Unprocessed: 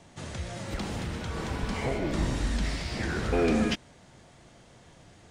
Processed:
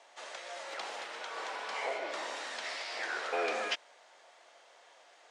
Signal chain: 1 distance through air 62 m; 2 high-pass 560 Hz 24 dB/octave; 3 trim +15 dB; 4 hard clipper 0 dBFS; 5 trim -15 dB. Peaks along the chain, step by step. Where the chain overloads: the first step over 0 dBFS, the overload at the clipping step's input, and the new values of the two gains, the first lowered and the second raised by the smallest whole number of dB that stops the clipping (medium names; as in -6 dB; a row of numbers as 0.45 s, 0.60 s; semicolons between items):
-15.0 dBFS, -20.5 dBFS, -5.5 dBFS, -5.5 dBFS, -20.5 dBFS; nothing clips